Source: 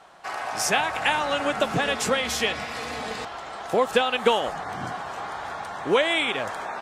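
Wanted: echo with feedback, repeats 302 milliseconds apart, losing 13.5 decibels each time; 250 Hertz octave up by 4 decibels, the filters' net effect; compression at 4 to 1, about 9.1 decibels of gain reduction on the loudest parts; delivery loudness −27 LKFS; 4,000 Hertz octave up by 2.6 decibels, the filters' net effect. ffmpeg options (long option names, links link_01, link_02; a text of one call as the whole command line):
ffmpeg -i in.wav -af "equalizer=frequency=250:width_type=o:gain=5,equalizer=frequency=4000:width_type=o:gain=3.5,acompressor=threshold=-25dB:ratio=4,aecho=1:1:302|604:0.211|0.0444,volume=2dB" out.wav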